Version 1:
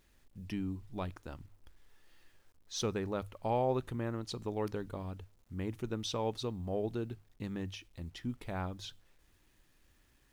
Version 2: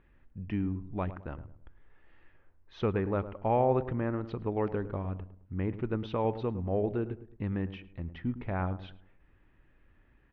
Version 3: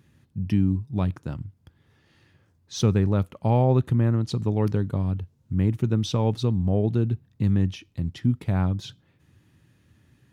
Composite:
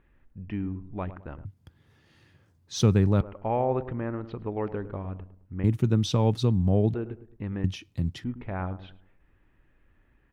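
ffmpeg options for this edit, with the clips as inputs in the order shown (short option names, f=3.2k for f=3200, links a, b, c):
-filter_complex "[2:a]asplit=3[a][b][c];[1:a]asplit=4[d][e][f][g];[d]atrim=end=1.452[h];[a]atrim=start=1.448:end=3.212[i];[e]atrim=start=3.208:end=5.642[j];[b]atrim=start=5.638:end=6.942[k];[f]atrim=start=6.938:end=7.642[l];[c]atrim=start=7.638:end=8.242[m];[g]atrim=start=8.238[n];[h][i]acrossfade=d=0.004:c1=hsin:c2=hsin[o];[o][j]acrossfade=d=0.004:c1=hsin:c2=hsin[p];[p][k]acrossfade=d=0.004:c1=hsin:c2=hsin[q];[q][l]acrossfade=d=0.004:c1=hsin:c2=hsin[r];[r][m]acrossfade=d=0.004:c1=hsin:c2=hsin[s];[s][n]acrossfade=d=0.004:c1=hsin:c2=hsin"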